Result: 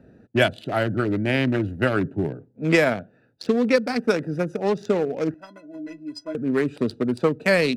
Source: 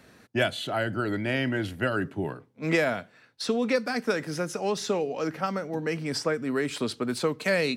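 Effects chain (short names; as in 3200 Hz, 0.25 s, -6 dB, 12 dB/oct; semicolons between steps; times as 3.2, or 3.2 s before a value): Wiener smoothing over 41 samples; 5.34–6.35 metallic resonator 300 Hz, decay 0.21 s, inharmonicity 0.03; gain +7 dB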